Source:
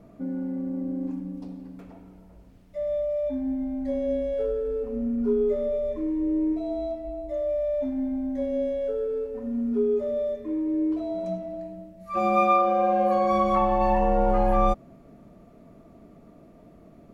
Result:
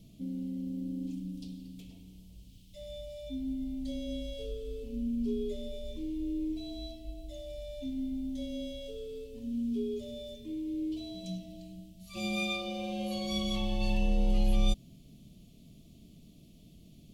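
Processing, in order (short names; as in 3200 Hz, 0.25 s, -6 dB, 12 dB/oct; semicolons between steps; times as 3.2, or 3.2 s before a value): EQ curve 150 Hz 0 dB, 1500 Hz -30 dB, 3100 Hz +12 dB, 5300 Hz +9 dB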